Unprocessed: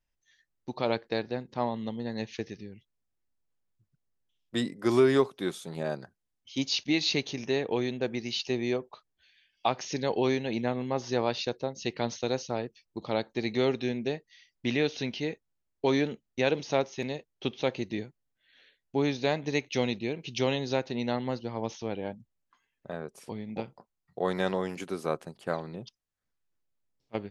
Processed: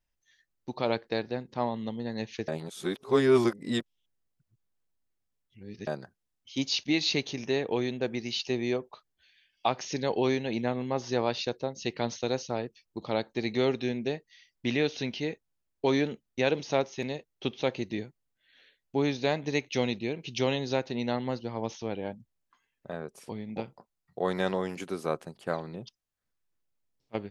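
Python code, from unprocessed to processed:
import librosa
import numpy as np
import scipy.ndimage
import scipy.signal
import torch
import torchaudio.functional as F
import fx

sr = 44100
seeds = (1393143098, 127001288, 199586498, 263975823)

y = fx.edit(x, sr, fx.reverse_span(start_s=2.48, length_s=3.39), tone=tone)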